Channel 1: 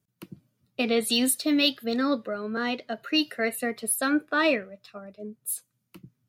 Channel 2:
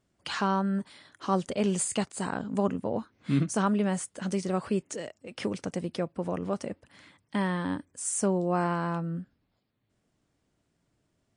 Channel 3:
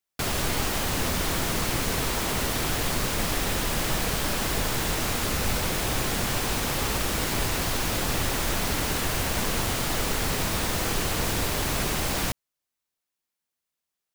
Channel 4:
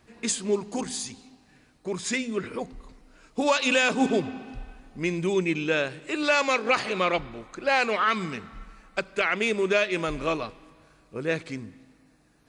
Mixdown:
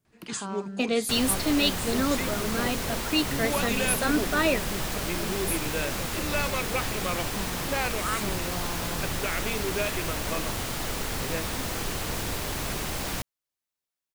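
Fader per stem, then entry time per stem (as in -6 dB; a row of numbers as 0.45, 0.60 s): -1.5, -9.5, -4.5, -7.5 dB; 0.00, 0.00, 0.90, 0.05 s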